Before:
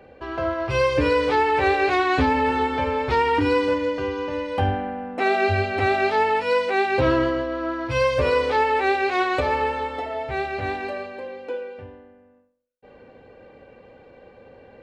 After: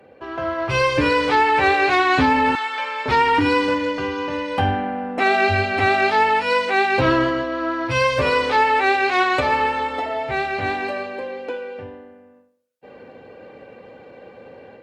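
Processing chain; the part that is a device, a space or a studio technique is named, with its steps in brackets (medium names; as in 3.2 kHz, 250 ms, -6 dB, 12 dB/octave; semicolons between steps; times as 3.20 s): 2.55–3.06 s: high-pass 1.3 kHz 12 dB/octave; dynamic bell 460 Hz, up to -7 dB, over -34 dBFS, Q 1.4; video call (high-pass 120 Hz 12 dB/octave; level rider gain up to 6 dB; Opus 32 kbps 48 kHz)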